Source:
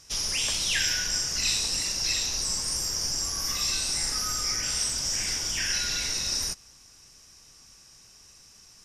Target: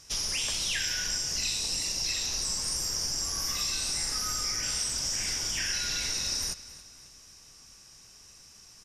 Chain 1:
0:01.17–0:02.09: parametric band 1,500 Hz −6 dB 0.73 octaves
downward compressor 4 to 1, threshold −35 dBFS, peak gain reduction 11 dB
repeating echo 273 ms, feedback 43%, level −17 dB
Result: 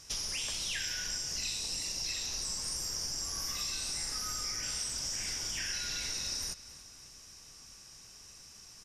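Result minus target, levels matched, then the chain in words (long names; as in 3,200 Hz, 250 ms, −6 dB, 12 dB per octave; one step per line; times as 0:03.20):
downward compressor: peak gain reduction +5.5 dB
0:01.17–0:02.09: parametric band 1,500 Hz −6 dB 0.73 octaves
downward compressor 4 to 1, threshold −27.5 dBFS, peak gain reduction 5.5 dB
repeating echo 273 ms, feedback 43%, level −17 dB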